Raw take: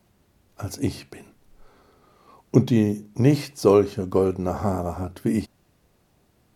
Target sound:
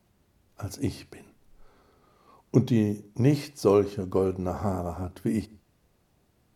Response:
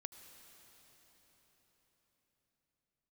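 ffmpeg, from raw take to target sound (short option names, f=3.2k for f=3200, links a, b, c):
-filter_complex "[0:a]asplit=2[a][b];[1:a]atrim=start_sample=2205,afade=t=out:st=0.22:d=0.01,atrim=end_sample=10143,lowshelf=f=160:g=6.5[c];[b][c]afir=irnorm=-1:irlink=0,volume=-3.5dB[d];[a][d]amix=inputs=2:normalize=0,volume=-7.5dB"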